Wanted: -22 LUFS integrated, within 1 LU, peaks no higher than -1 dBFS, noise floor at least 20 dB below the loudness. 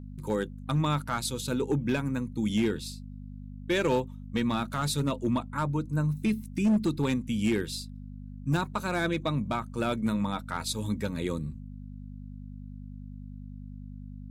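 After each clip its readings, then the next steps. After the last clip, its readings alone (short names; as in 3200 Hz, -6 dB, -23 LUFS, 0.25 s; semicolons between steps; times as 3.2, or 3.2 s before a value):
clipped 0.8%; flat tops at -19.5 dBFS; hum 50 Hz; harmonics up to 250 Hz; hum level -39 dBFS; loudness -30.0 LUFS; peak -19.5 dBFS; loudness target -22.0 LUFS
-> clip repair -19.5 dBFS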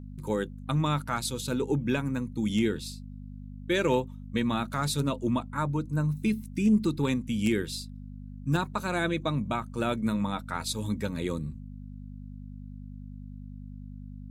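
clipped 0.0%; hum 50 Hz; harmonics up to 250 Hz; hum level -39 dBFS
-> de-hum 50 Hz, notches 5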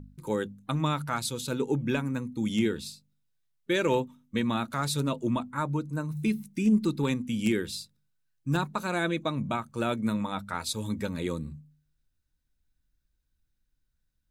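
hum none; loudness -30.0 LUFS; peak -10.5 dBFS; loudness target -22.0 LUFS
-> gain +8 dB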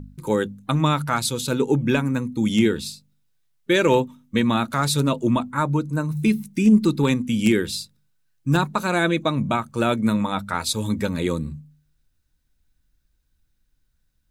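loudness -22.0 LUFS; peak -2.5 dBFS; noise floor -69 dBFS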